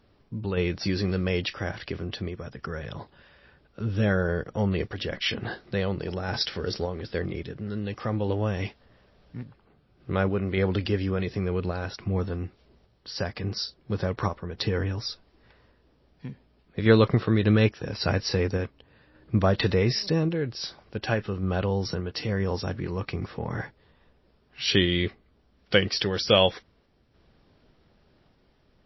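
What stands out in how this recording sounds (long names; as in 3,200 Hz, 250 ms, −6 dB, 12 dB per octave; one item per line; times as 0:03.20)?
sample-and-hold tremolo
MP3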